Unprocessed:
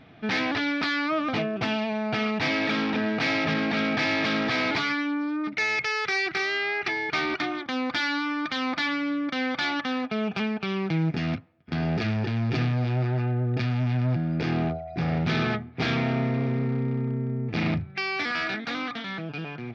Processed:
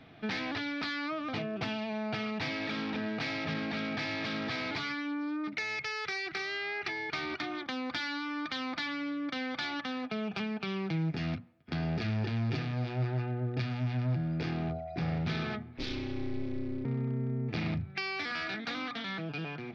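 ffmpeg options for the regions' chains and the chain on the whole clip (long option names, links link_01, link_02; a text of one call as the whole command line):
ffmpeg -i in.wav -filter_complex "[0:a]asettb=1/sr,asplit=3[link_01][link_02][link_03];[link_01]atrim=end=15.774[link_04];[link_02]atrim=start=15.77:end=16.85,asetpts=PTS-STARTPTS,afade=type=in:duration=0.004:curve=qsin,afade=type=out:start_time=1.076:duration=0.004:curve=qsin,acrossover=split=240|3000[link_05][link_06][link_07];[link_06]acompressor=threshold=-47dB:ratio=2.5:attack=3.2:release=140:knee=2.83:detection=peak[link_08];[link_05][link_08][link_07]amix=inputs=3:normalize=0,aeval=exprs='val(0)*sin(2*PI*130*n/s)':channel_layout=same[link_09];[link_03]atrim=start=16.846[link_10];[link_04][link_09]acrossfade=duration=0.004:curve1=hsin:curve2=qsin[link_11];[link_11][link_10]acrossfade=duration=0.004:curve1=qsin:curve2=hsin,acrossover=split=140[link_12][link_13];[link_13]acompressor=threshold=-30dB:ratio=6[link_14];[link_12][link_14]amix=inputs=2:normalize=0,equalizer=frequency=4300:width_type=o:width=0.77:gain=3,bandreject=frequency=60:width_type=h:width=6,bandreject=frequency=120:width_type=h:width=6,bandreject=frequency=180:width_type=h:width=6,bandreject=frequency=240:width_type=h:width=6,volume=-3dB" out.wav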